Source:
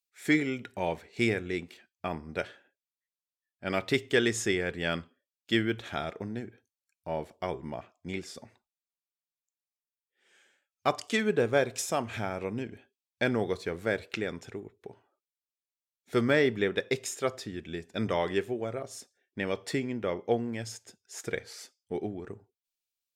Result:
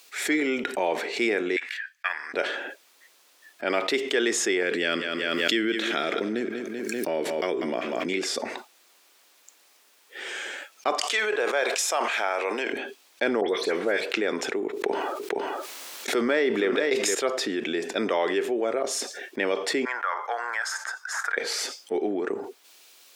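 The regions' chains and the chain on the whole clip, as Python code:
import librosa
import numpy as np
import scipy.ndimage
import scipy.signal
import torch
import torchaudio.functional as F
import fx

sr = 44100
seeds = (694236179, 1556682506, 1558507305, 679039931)

y = fx.chain(x, sr, fx.highpass_res(hz=1700.0, q=10.0),
    fx.upward_expand(threshold_db=-42.0, expansion=2.5), at=(1.56, 2.34))
y = fx.chain(y, sr, fx.peak_eq(hz=840.0, db=-12.0, octaves=1.0),
    fx.echo_feedback(ms=193, feedback_pct=33, wet_db=-16),
    fx.pre_swell(db_per_s=51.0), at=(4.63, 8.21))
y = fx.chain(y, sr, fx.highpass(hz=690.0, slope=12),
    fx.sustainer(db_per_s=110.0), at=(11.0, 12.73))
y = fx.chain(y, sr, fx.dispersion(late='highs', ms=81.0, hz=2600.0),
    fx.band_squash(depth_pct=70), at=(13.41, 14.01))
y = fx.chain(y, sr, fx.gate_hold(open_db=-55.0, close_db=-64.0, hold_ms=71.0, range_db=-21, attack_ms=1.4, release_ms=100.0),
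    fx.echo_single(ms=465, db=-13.5),
    fx.env_flatten(amount_pct=50), at=(14.73, 17.15))
y = fx.chain(y, sr, fx.highpass(hz=1000.0, slope=24),
    fx.high_shelf_res(hz=2000.0, db=-9.5, q=3.0),
    fx.band_squash(depth_pct=40), at=(19.85, 21.37))
y = scipy.signal.sosfilt(scipy.signal.butter(4, 290.0, 'highpass', fs=sr, output='sos'), y)
y = fx.high_shelf(y, sr, hz=7400.0, db=-8.5)
y = fx.env_flatten(y, sr, amount_pct=70)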